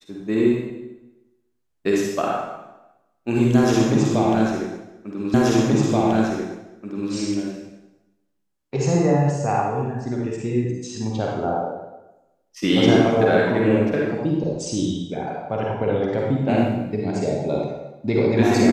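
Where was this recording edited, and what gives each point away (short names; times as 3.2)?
5.34 repeat of the last 1.78 s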